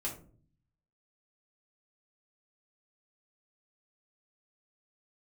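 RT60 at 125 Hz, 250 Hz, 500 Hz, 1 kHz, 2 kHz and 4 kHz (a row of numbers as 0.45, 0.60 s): 1.0, 0.80, 0.55, 0.35, 0.30, 0.20 s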